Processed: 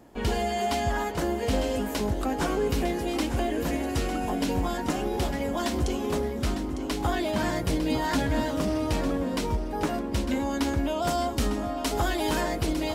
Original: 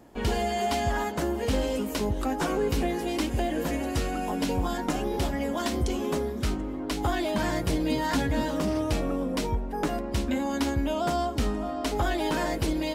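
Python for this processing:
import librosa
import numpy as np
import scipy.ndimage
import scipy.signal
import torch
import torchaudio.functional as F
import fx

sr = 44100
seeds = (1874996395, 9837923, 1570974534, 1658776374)

y = fx.high_shelf(x, sr, hz=5400.0, db=7.5, at=(11.02, 12.41))
y = fx.echo_feedback(y, sr, ms=903, feedback_pct=34, wet_db=-10.5)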